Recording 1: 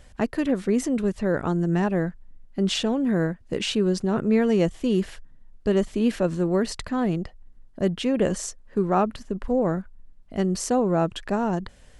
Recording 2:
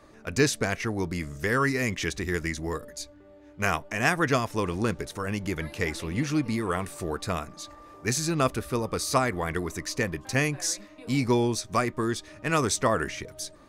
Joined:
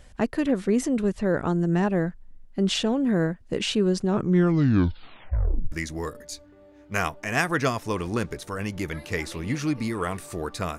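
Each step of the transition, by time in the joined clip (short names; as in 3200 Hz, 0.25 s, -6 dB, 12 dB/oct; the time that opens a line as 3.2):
recording 1
4.05 tape stop 1.67 s
5.72 switch to recording 2 from 2.4 s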